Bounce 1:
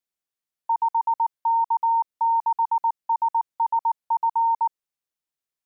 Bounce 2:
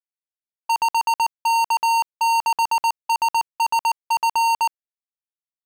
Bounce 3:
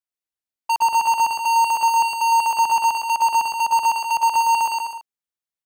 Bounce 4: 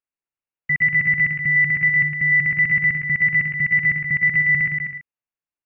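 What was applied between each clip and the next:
gate -31 dBFS, range -16 dB; sample leveller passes 5
bouncing-ball echo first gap 0.11 s, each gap 0.75×, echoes 5
inverted band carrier 2900 Hz

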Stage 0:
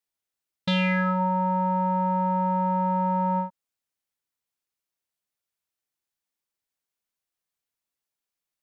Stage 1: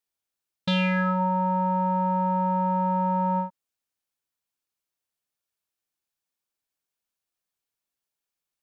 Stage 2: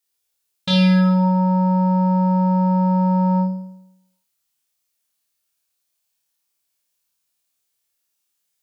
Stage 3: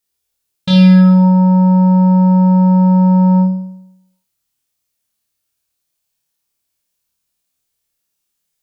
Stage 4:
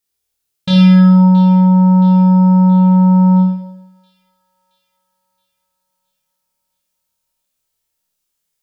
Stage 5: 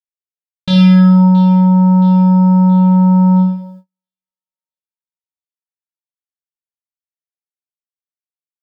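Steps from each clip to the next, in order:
notch 2000 Hz, Q 19
high shelf 2700 Hz +10 dB; on a send: flutter echo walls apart 4.6 m, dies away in 0.8 s
low shelf 300 Hz +10 dB; gain +1 dB
thin delay 0.672 s, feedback 52%, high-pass 2600 Hz, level -15.5 dB; digital reverb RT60 0.54 s, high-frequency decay 0.5×, pre-delay 25 ms, DRR 8 dB; gain -1 dB
gate -35 dBFS, range -41 dB

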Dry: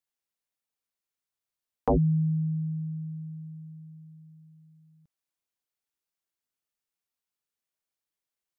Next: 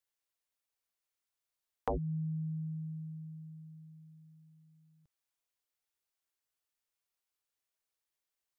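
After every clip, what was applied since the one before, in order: bell 200 Hz -11.5 dB 0.93 oct; compressor 2.5:1, threshold -35 dBFS, peak gain reduction 9 dB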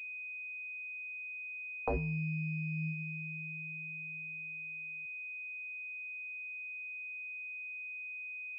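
flange 0.24 Hz, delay 6.8 ms, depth 9 ms, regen +82%; pulse-width modulation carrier 2500 Hz; gain +5 dB

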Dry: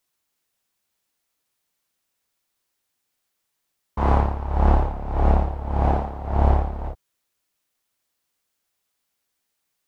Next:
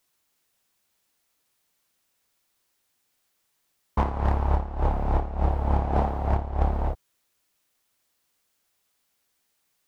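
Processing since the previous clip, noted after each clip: negative-ratio compressor -22 dBFS, ratio -0.5; hard clip -12.5 dBFS, distortion -26 dB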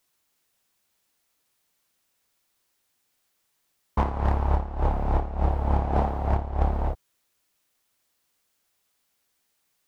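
nothing audible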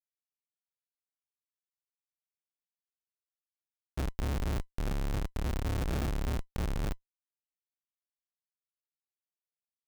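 level-crossing sampler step -43.5 dBFS; Schmitt trigger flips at -24 dBFS; sample-rate reducer 1000 Hz, jitter 0%; gain -1.5 dB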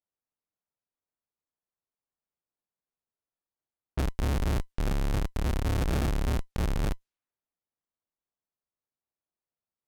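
low-pass opened by the level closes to 1100 Hz, open at -33.5 dBFS; in parallel at +2 dB: limiter -31.5 dBFS, peak gain reduction 8 dB

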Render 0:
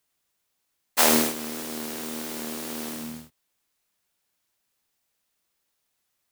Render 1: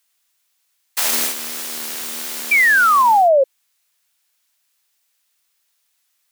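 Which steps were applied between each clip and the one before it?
tilt shelf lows -9.5 dB, about 680 Hz; painted sound fall, 2.51–3.44, 520–2400 Hz -12 dBFS; limiter -7.5 dBFS, peak gain reduction 11 dB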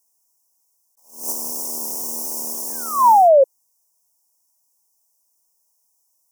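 Chebyshev band-stop 1000–5500 Hz, order 4; attack slew limiter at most 130 dB/s; gain +2 dB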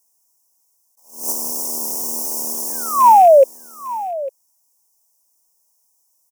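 rattling part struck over -38 dBFS, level -29 dBFS; echo 0.852 s -16 dB; gain +3 dB

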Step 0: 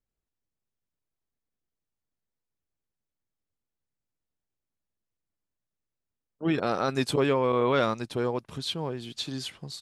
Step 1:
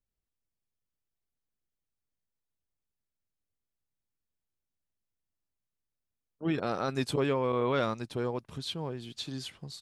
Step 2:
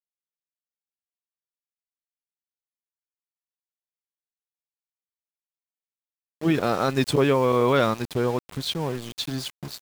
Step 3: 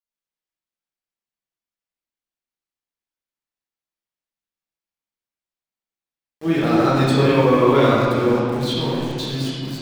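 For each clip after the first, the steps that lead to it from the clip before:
low shelf 140 Hz +5 dB; gain -5 dB
sample gate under -42 dBFS; gain +8.5 dB
reverb RT60 2.4 s, pre-delay 18 ms, DRR -7.5 dB; gain -3.5 dB

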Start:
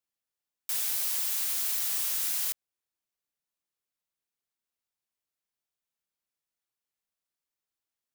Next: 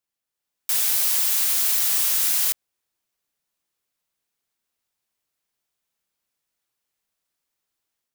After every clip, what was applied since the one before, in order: AGC gain up to 6 dB; gain +3 dB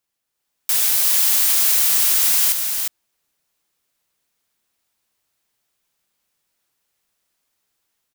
in parallel at +1 dB: limiter -18 dBFS, peak gain reduction 9 dB; on the sum: echo 0.356 s -5 dB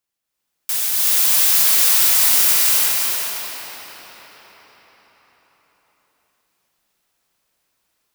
reverb RT60 5.6 s, pre-delay 0.228 s, DRR -7 dB; gain -3 dB

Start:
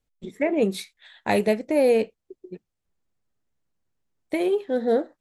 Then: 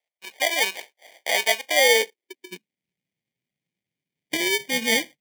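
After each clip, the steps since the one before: sample-and-hold 33×; high-pass sweep 670 Hz -> 150 Hz, 1.67–2.94; resonant high shelf 1700 Hz +10 dB, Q 3; gain -6 dB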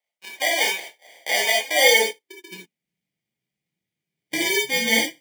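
non-linear reverb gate 0.1 s flat, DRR -2 dB; gain -2.5 dB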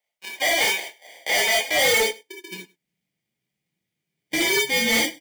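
overloaded stage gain 19.5 dB; echo 0.102 s -23 dB; gain +3 dB

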